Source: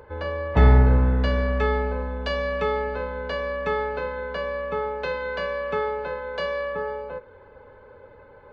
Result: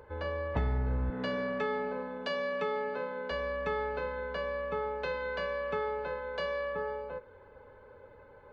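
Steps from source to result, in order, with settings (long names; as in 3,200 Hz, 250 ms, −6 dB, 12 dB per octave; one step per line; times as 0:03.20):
0:01.10–0:03.31: high-pass filter 150 Hz 24 dB per octave
downward compressor 6 to 1, threshold −22 dBFS, peak gain reduction 11 dB
level −6 dB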